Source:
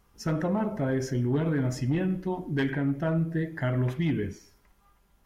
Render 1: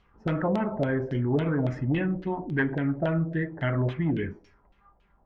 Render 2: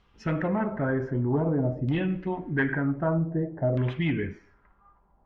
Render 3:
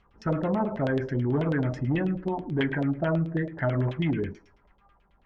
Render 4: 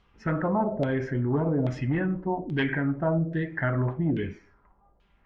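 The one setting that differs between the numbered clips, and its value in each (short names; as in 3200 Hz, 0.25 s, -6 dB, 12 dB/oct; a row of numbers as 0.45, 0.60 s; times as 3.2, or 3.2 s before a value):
LFO low-pass, rate: 3.6, 0.53, 9.2, 1.2 Hz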